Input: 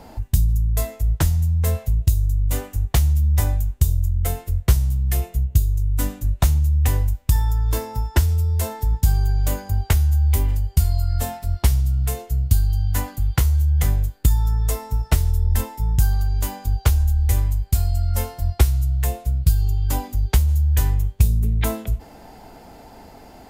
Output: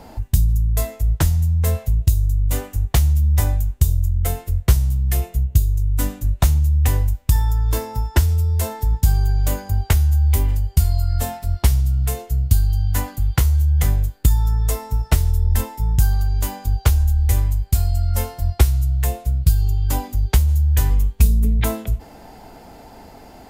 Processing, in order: 20.9–21.6 comb 4.3 ms, depth 76%; gain +1.5 dB

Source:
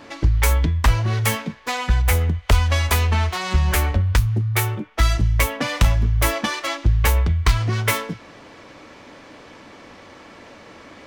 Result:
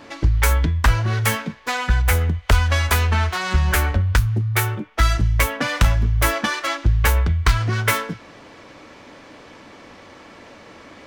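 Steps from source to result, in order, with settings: dynamic EQ 1500 Hz, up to +7 dB, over -42 dBFS, Q 3.3

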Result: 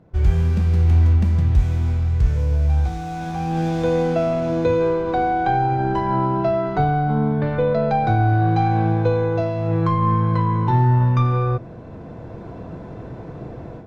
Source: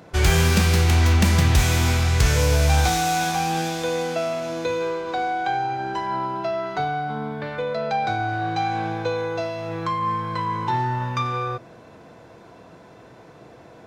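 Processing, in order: tilt -4 dB/oct; AGC gain up to 11.5 dB; gain -6 dB

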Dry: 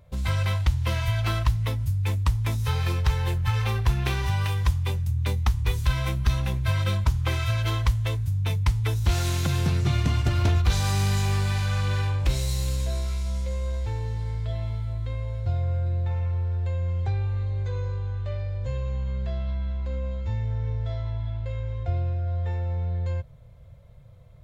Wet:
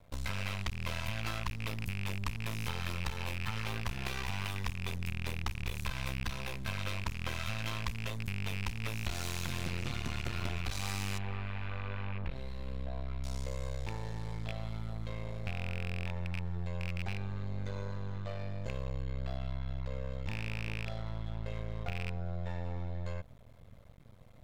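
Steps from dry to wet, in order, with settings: rattling part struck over -22 dBFS, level -24 dBFS; low shelf 410 Hz -6 dB; compressor 4:1, threshold -34 dBFS, peak gain reduction 11.5 dB; half-wave rectifier; 11.18–13.24 air absorption 480 m; gain +3 dB

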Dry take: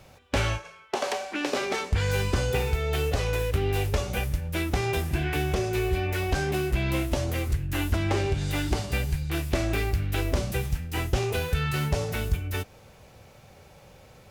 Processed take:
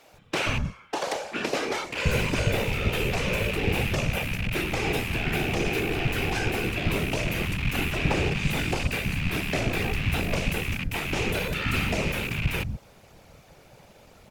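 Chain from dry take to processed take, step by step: rattling part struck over -33 dBFS, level -18 dBFS; bands offset in time highs, lows 0.13 s, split 210 Hz; whisperiser

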